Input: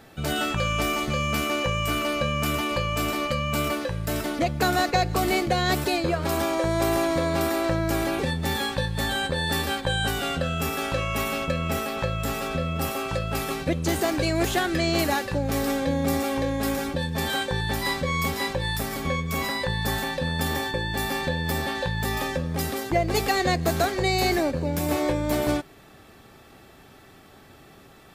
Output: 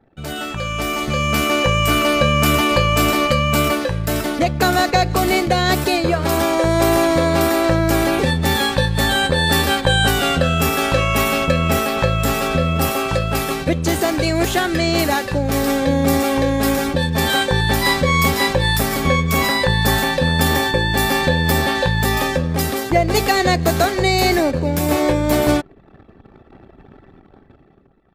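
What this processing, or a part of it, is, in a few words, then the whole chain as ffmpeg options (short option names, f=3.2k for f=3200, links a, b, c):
voice memo with heavy noise removal: -af "anlmdn=0.0251,dynaudnorm=f=200:g=11:m=15.5dB,volume=-1dB"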